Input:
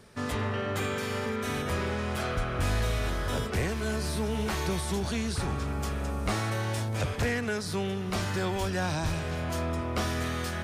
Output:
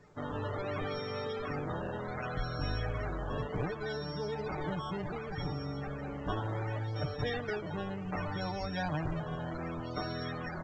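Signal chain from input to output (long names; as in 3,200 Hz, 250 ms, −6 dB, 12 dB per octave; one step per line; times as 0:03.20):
samples sorted by size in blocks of 8 samples
comb filter 6.7 ms, depth 80%
sample-and-hold swept by an LFO 11×, swing 160% 0.67 Hz
high-frequency loss of the air 56 metres
spectral peaks only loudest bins 64
tape delay 127 ms, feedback 46%, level −24 dB, low-pass 1,700 Hz
level −6.5 dB
A-law companding 128 kbit/s 16,000 Hz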